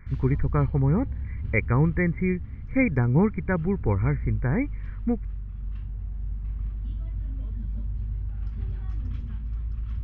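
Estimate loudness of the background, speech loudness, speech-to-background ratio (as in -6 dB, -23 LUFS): -34.5 LUFS, -25.5 LUFS, 9.0 dB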